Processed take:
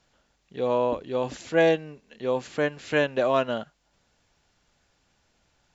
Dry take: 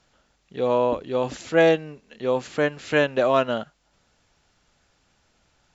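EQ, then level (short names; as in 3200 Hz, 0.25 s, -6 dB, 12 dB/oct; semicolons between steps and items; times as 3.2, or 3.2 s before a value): notch 1300 Hz, Q 18; -3.0 dB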